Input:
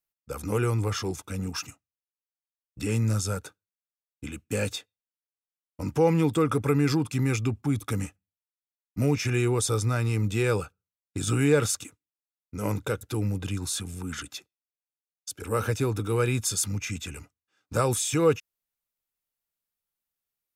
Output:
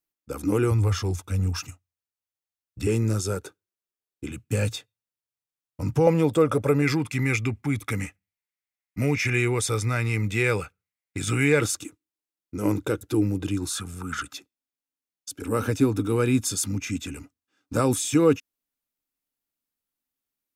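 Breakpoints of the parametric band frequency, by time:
parametric band +12.5 dB 0.52 octaves
300 Hz
from 0:00.71 89 Hz
from 0:02.87 370 Hz
from 0:04.31 120 Hz
from 0:06.07 570 Hz
from 0:06.82 2,100 Hz
from 0:11.61 320 Hz
from 0:13.70 1,300 Hz
from 0:14.33 270 Hz

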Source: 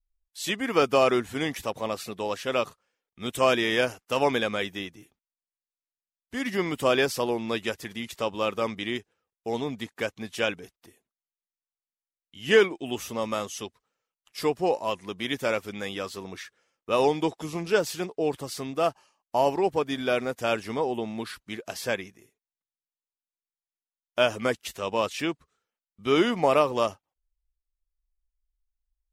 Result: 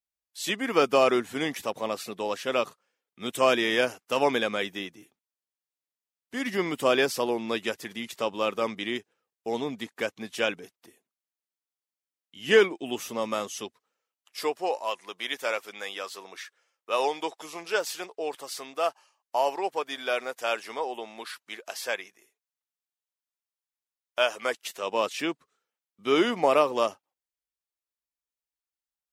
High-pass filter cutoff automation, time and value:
0:13.64 180 Hz
0:14.73 590 Hz
0:24.41 590 Hz
0:25.09 240 Hz

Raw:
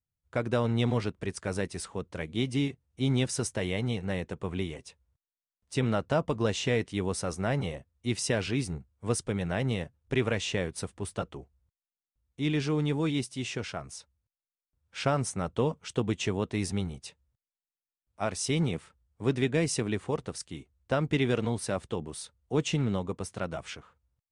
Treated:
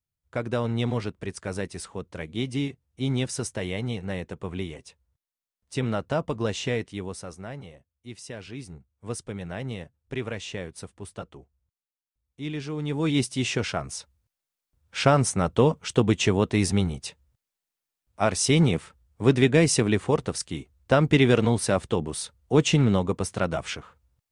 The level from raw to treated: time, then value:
0:06.69 +0.5 dB
0:07.68 −11 dB
0:08.27 −11 dB
0:09.13 −4 dB
0:12.75 −4 dB
0:13.22 +8 dB

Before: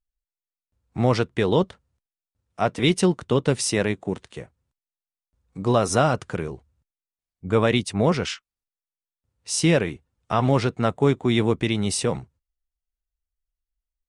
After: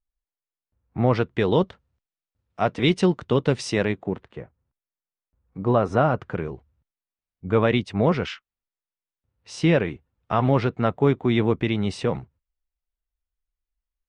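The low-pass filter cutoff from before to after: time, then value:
0:00.99 2,000 Hz
0:01.43 4,300 Hz
0:03.80 4,300 Hz
0:04.24 1,800 Hz
0:06.09 1,800 Hz
0:06.53 3,000 Hz

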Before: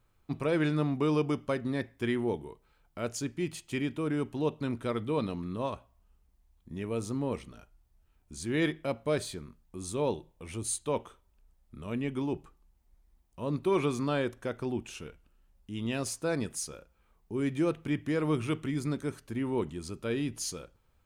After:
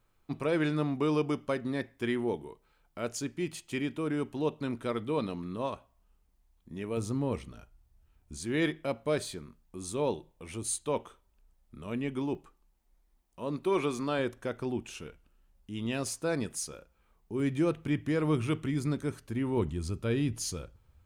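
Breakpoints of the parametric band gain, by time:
parametric band 77 Hz 1.8 octaves
−5.5 dB
from 0:06.97 +5 dB
from 0:08.37 −3.5 dB
from 0:12.35 −12 dB
from 0:14.19 −1.5 dB
from 0:17.40 +4.5 dB
from 0:19.57 +11.5 dB

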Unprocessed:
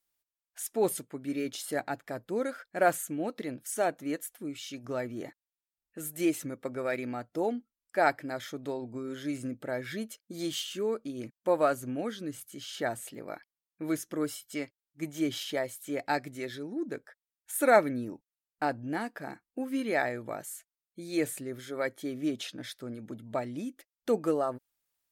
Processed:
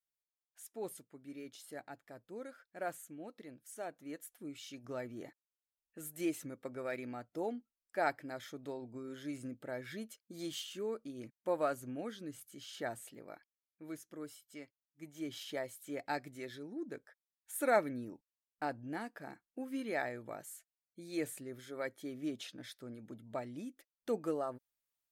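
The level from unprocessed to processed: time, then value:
0:03.89 −15 dB
0:04.47 −8 dB
0:12.97 −8 dB
0:13.83 −14.5 dB
0:15.04 −14.5 dB
0:15.54 −8 dB

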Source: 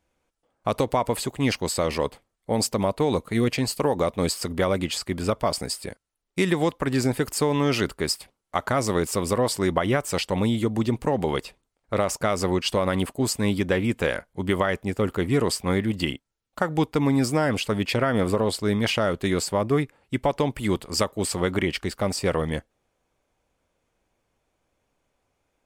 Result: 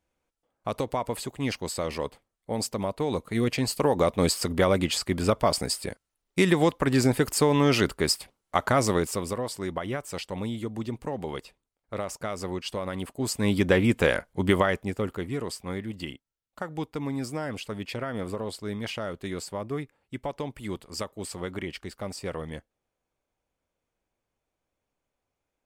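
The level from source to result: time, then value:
0:02.96 −6 dB
0:04.08 +1 dB
0:08.84 +1 dB
0:09.43 −9 dB
0:13.00 −9 dB
0:13.66 +2 dB
0:14.50 +2 dB
0:15.38 −10 dB

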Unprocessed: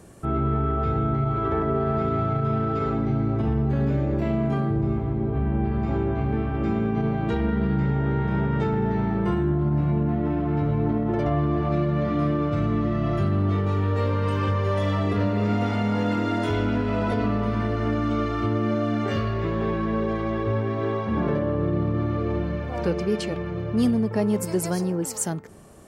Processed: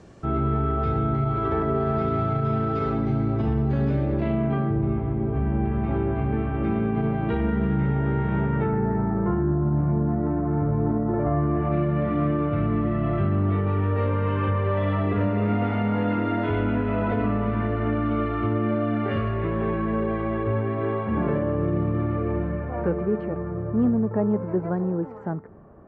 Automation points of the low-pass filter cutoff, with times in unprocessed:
low-pass filter 24 dB per octave
0:03.82 6,000 Hz
0:04.52 3,100 Hz
0:08.38 3,100 Hz
0:09.02 1,600 Hz
0:11.23 1,600 Hz
0:11.77 2,700 Hz
0:21.96 2,700 Hz
0:23.22 1,500 Hz

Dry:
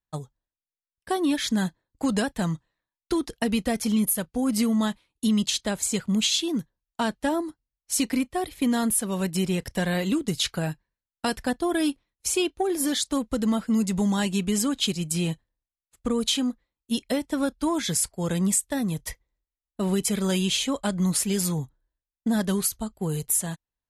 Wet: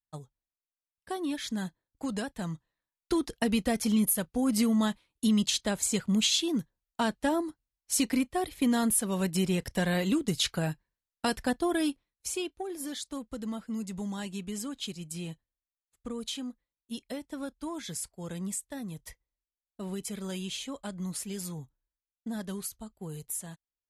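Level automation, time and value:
0:02.43 −9 dB
0:03.15 −2.5 dB
0:11.62 −2.5 dB
0:12.70 −12 dB

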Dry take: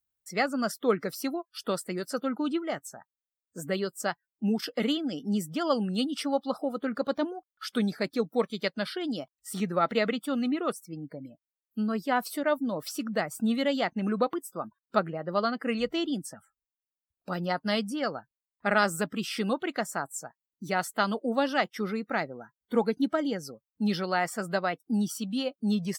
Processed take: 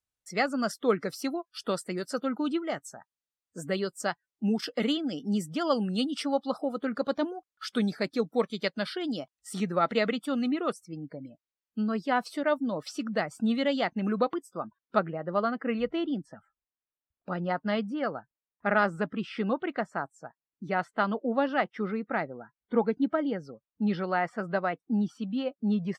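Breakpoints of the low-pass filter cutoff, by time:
0:10.49 9,100 Hz
0:11.02 5,600 Hz
0:14.41 5,600 Hz
0:15.46 2,200 Hz

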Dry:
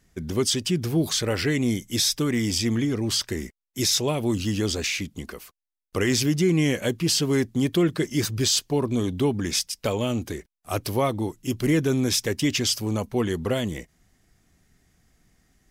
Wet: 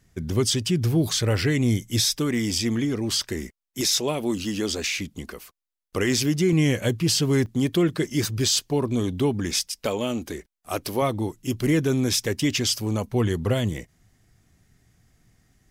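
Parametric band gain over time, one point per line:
parametric band 110 Hz 0.66 octaves
+8 dB
from 0:02.05 −2.5 dB
from 0:03.81 −12 dB
from 0:04.96 −2 dB
from 0:06.53 +8.5 dB
from 0:07.46 +1 dB
from 0:09.51 −9.5 dB
from 0:11.02 +1.5 dB
from 0:13.11 +8.5 dB

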